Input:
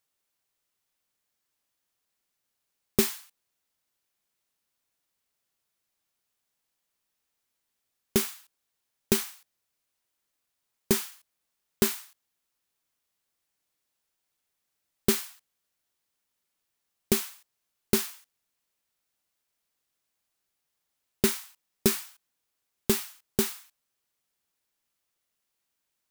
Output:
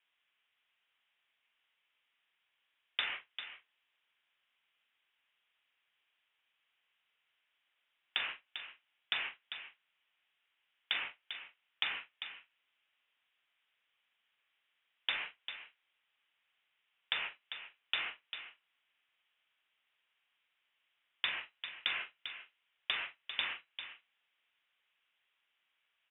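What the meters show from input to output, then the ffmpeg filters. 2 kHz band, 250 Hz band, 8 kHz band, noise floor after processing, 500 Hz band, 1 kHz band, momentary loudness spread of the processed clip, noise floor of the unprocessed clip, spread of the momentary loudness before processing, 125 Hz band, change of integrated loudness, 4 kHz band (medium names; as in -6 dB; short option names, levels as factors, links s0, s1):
+2.5 dB, -35.5 dB, under -40 dB, -82 dBFS, -27.5 dB, -4.0 dB, 13 LU, -82 dBFS, 13 LU, under -30 dB, -10.5 dB, 0.0 dB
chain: -filter_complex "[0:a]aeval=exprs='val(0)+0.5*0.0398*sgn(val(0))':c=same,agate=range=0.01:threshold=0.0355:ratio=16:detection=peak,acrossover=split=490 2300:gain=0.2 1 0.0794[s0][s1][s2];[s0][s1][s2]amix=inputs=3:normalize=0,acrossover=split=760|2200[s3][s4][s5];[s3]acompressor=threshold=0.00631:ratio=4[s6];[s4]acompressor=threshold=0.0126:ratio=4[s7];[s5]acompressor=threshold=0.00631:ratio=4[s8];[s6][s7][s8]amix=inputs=3:normalize=0,asplit=2[s9][s10];[s10]adelay=43,volume=0.251[s11];[s9][s11]amix=inputs=2:normalize=0,asplit=2[s12][s13];[s13]adelay=396.5,volume=0.316,highshelf=f=4000:g=-8.92[s14];[s12][s14]amix=inputs=2:normalize=0,lowpass=f=3300:t=q:w=0.5098,lowpass=f=3300:t=q:w=0.6013,lowpass=f=3300:t=q:w=0.9,lowpass=f=3300:t=q:w=2.563,afreqshift=-3900,asplit=2[s15][s16];[s16]acompressor=threshold=0.0141:ratio=6,volume=0.794[s17];[s15][s17]amix=inputs=2:normalize=0"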